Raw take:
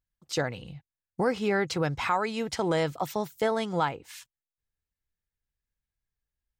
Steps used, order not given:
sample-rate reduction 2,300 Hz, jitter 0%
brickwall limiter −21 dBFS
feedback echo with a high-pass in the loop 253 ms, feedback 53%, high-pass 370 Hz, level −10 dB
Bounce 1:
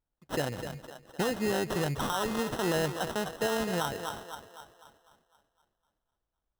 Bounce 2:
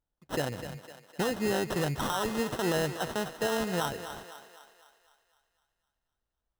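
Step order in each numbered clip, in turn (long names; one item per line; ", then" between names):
feedback echo with a high-pass in the loop, then brickwall limiter, then sample-rate reduction
brickwall limiter, then sample-rate reduction, then feedback echo with a high-pass in the loop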